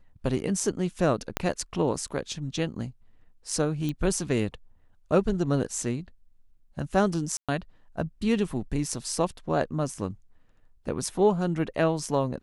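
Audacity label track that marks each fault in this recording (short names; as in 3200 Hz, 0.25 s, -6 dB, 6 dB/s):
1.370000	1.370000	pop -9 dBFS
3.890000	3.890000	pop -19 dBFS
7.370000	7.490000	gap 0.116 s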